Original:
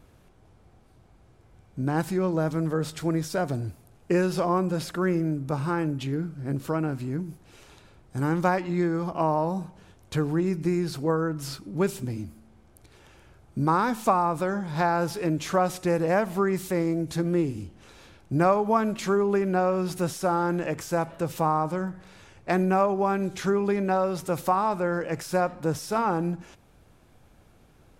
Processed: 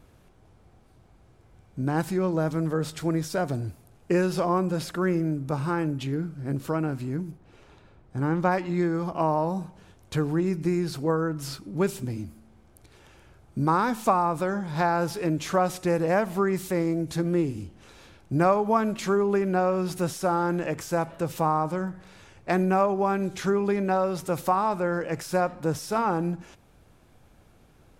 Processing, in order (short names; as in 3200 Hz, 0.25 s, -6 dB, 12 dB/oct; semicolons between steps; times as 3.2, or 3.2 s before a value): 7.3–8.5 LPF 1400 Hz -> 2600 Hz 6 dB/oct